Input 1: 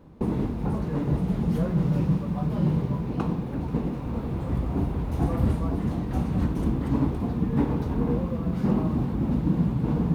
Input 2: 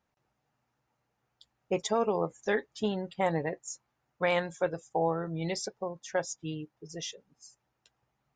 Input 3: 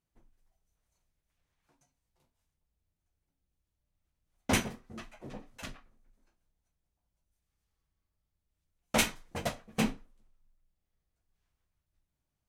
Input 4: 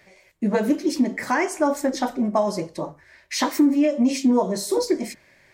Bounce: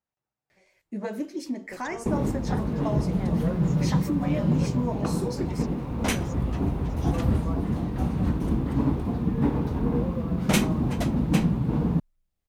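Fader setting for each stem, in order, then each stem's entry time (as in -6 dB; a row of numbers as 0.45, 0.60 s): 0.0, -13.0, +1.0, -11.0 dB; 1.85, 0.00, 1.55, 0.50 s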